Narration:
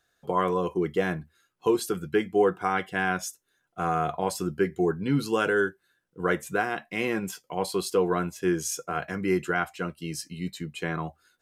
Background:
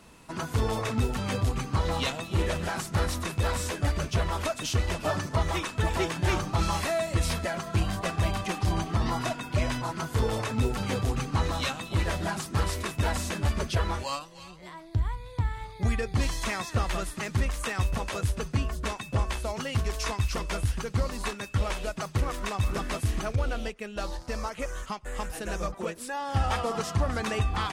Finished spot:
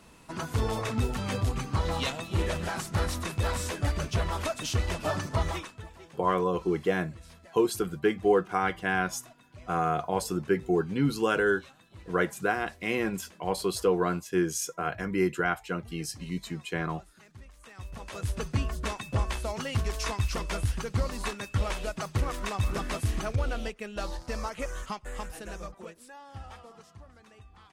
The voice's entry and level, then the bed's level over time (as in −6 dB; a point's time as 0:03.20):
5.90 s, −1.0 dB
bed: 0:05.48 −1.5 dB
0:05.95 −23 dB
0:17.54 −23 dB
0:18.38 −1 dB
0:24.96 −1 dB
0:27.17 −26 dB